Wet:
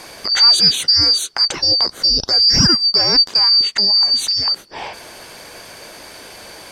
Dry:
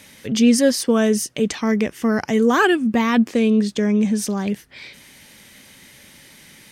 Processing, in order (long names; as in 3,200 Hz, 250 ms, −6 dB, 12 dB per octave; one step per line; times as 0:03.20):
band-splitting scrambler in four parts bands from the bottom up 2341
high-shelf EQ 9,600 Hz −9 dB
in parallel at +3 dB: downward compressor, threshold −33 dBFS, peak gain reduction 20 dB
on the sum: level +3 dB